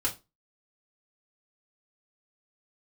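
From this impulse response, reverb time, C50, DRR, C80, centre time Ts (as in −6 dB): 0.25 s, 14.0 dB, −6.0 dB, 21.5 dB, 13 ms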